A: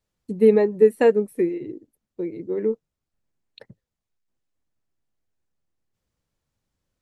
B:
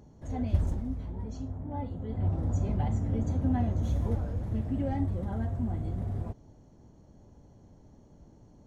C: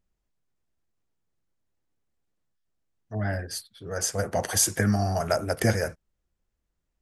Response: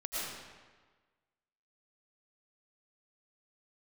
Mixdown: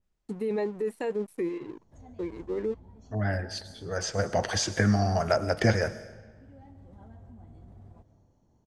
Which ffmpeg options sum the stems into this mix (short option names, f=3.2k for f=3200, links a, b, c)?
-filter_complex "[0:a]highshelf=f=2.9k:g=11.5,aeval=exprs='sgn(val(0))*max(abs(val(0))-0.00531,0)':c=same,volume=-5.5dB[a];[1:a]highshelf=f=4k:g=6.5,acompressor=threshold=-34dB:ratio=6,adelay=1700,volume=-14dB,asplit=2[b][c];[c]volume=-11dB[d];[2:a]adynamicequalizer=threshold=0.00891:dfrequency=5500:dqfactor=0.82:tfrequency=5500:tqfactor=0.82:attack=5:release=100:ratio=0.375:range=2.5:mode=boostabove:tftype=bell,volume=-0.5dB,asplit=3[e][f][g];[f]volume=-19dB[h];[g]apad=whole_len=456927[i];[b][i]sidechaincompress=threshold=-32dB:ratio=8:attack=16:release=1090[j];[a][j]amix=inputs=2:normalize=0,equalizer=f=890:w=1.5:g=5,alimiter=limit=-22.5dB:level=0:latency=1:release=17,volume=0dB[k];[3:a]atrim=start_sample=2205[l];[d][h]amix=inputs=2:normalize=0[m];[m][l]afir=irnorm=-1:irlink=0[n];[e][k][n]amix=inputs=3:normalize=0,lowpass=8.3k,acrossover=split=5000[o][p];[p]acompressor=threshold=-52dB:ratio=4:attack=1:release=60[q];[o][q]amix=inputs=2:normalize=0"